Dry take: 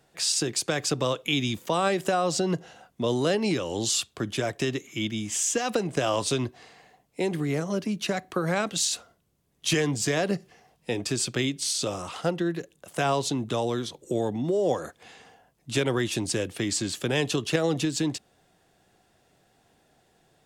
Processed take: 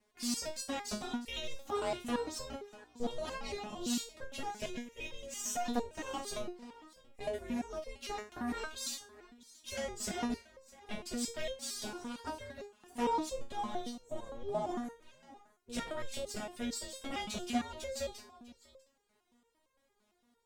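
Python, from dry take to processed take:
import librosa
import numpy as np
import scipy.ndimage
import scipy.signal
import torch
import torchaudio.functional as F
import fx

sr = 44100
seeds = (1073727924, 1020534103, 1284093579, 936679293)

p1 = np.where(x < 0.0, 10.0 ** (-7.0 / 20.0) * x, x)
p2 = p1 + fx.echo_single(p1, sr, ms=647, db=-19.0, dry=0)
p3 = p2 * np.sin(2.0 * np.pi * 240.0 * np.arange(len(p2)) / sr)
p4 = fx.resonator_held(p3, sr, hz=8.8, low_hz=210.0, high_hz=530.0)
y = p4 * librosa.db_to_amplitude(7.5)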